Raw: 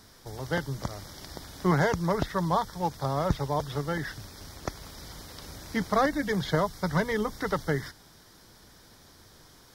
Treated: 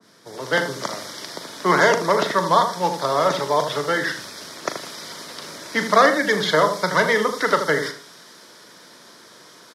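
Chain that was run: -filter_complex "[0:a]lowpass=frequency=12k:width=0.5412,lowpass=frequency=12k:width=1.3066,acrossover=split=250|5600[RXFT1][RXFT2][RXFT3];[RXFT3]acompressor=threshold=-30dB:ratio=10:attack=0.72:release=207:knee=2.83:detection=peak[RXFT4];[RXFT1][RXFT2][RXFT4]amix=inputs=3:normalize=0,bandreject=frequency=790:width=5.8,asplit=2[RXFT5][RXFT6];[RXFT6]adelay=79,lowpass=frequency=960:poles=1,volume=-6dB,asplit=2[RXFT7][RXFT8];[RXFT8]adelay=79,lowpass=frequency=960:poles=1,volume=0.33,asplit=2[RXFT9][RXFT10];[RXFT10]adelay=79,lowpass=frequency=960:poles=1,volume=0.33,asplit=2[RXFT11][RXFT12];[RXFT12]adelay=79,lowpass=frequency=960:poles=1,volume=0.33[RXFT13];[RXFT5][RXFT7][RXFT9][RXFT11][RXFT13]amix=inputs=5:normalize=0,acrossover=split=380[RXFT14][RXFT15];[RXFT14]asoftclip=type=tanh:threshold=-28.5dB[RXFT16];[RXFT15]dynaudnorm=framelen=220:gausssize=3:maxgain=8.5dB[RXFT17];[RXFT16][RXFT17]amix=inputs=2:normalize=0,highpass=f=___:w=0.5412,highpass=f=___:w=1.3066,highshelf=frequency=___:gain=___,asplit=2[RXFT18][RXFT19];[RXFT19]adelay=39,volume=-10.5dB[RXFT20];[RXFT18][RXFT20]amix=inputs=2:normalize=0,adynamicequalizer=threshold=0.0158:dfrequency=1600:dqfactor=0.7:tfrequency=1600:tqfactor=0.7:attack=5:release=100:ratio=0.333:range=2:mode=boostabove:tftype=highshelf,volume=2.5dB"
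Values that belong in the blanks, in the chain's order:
160, 160, 5.3k, -5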